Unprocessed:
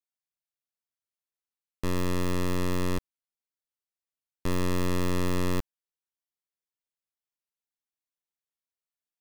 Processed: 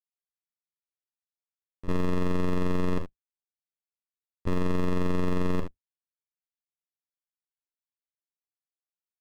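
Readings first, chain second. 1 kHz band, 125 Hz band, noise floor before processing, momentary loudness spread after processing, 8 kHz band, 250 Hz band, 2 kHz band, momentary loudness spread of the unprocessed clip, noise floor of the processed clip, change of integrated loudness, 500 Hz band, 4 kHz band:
-0.5 dB, 0.0 dB, under -85 dBFS, 9 LU, under -10 dB, +1.0 dB, -3.0 dB, 8 LU, under -85 dBFS, +0.5 dB, +1.0 dB, -7.0 dB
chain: octaver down 2 oct, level -5 dB; LPF 1600 Hz 6 dB/oct; on a send: early reflections 38 ms -13.5 dB, 73 ms -16.5 dB; on the sum: gate with hold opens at -22 dBFS; limiter -29.5 dBFS, peak gain reduction 10 dB; gain +8.5 dB

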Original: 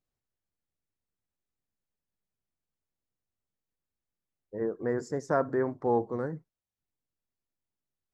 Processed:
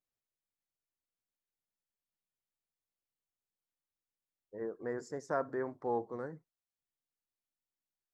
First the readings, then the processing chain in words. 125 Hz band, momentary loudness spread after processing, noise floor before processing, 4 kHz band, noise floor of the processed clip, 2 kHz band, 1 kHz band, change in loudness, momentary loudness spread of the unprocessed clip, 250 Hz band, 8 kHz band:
-12.0 dB, 10 LU, under -85 dBFS, n/a, under -85 dBFS, -6.0 dB, -6.5 dB, -8.0 dB, 9 LU, -9.5 dB, -5.5 dB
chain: low shelf 290 Hz -8 dB; gain -5.5 dB

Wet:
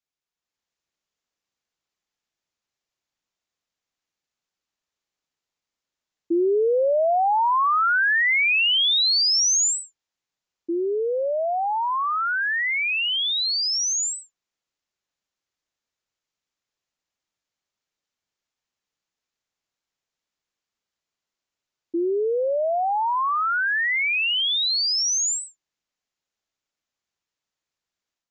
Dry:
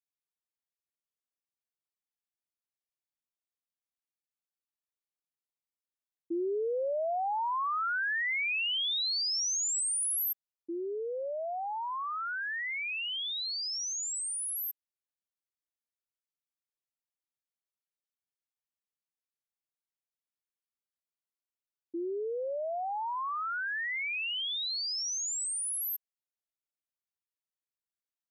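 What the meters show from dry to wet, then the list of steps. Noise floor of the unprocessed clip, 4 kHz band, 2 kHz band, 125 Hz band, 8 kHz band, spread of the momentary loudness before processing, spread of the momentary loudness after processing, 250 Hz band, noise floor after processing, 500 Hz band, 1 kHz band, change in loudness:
under -85 dBFS, +11.5 dB, +11.5 dB, n/a, +8.0 dB, 8 LU, 8 LU, +11.5 dB, under -85 dBFS, +11.5 dB, +11.5 dB, +11.0 dB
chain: AGC gain up to 6.5 dB; downsampling 16000 Hz; gain +5 dB

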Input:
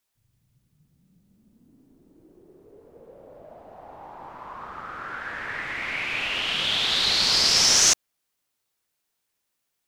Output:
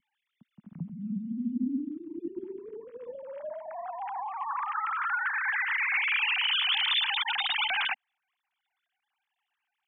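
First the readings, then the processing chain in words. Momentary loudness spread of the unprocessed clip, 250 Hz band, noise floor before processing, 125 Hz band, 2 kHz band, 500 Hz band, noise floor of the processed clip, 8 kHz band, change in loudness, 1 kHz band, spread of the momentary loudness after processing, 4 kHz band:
22 LU, +9.0 dB, -79 dBFS, n/a, +1.5 dB, -1.5 dB, -85 dBFS, under -40 dB, -8.0 dB, +2.5 dB, 17 LU, -6.5 dB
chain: sine-wave speech; compressor 2:1, threshold -28 dBFS, peak gain reduction 6.5 dB; vibrato 1.1 Hz 16 cents; resonant low shelf 330 Hz +11 dB, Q 3

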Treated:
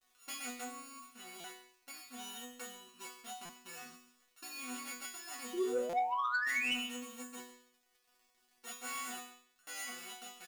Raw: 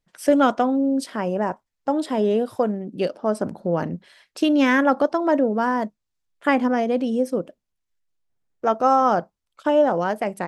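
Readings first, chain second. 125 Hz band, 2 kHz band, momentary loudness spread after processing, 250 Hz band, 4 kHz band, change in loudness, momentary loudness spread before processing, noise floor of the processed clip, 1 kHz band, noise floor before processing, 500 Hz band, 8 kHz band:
under -30 dB, -10.0 dB, 18 LU, -26.5 dB, -6.5 dB, -18.0 dB, 9 LU, -75 dBFS, -18.0 dB, -80 dBFS, -23.0 dB, n/a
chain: sample sorter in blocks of 32 samples; passive tone stack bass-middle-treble 5-5-5; crackle 150/s -42 dBFS; painted sound rise, 5.53–6.74, 330–3100 Hz -22 dBFS; resonator bank B3 fifth, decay 0.57 s; soft clip -36.5 dBFS, distortion -15 dB; echo 0.138 s -18 dB; stuck buffer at 1.4/3.45/5.89/9.63, samples 256, times 6; gain +9 dB

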